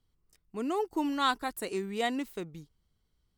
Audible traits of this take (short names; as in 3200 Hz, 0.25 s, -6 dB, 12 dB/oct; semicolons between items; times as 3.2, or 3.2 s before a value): noise floor -76 dBFS; spectral tilt -4.0 dB/oct